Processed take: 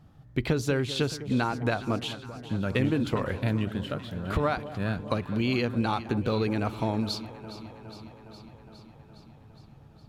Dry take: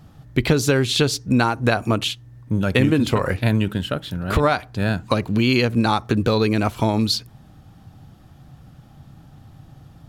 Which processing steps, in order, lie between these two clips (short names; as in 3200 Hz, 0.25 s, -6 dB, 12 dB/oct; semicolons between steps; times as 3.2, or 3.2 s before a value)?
high shelf 4200 Hz -7 dB; on a send: echo with dull and thin repeats by turns 0.206 s, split 940 Hz, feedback 83%, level -13 dB; on the sum: gain -8.5 dB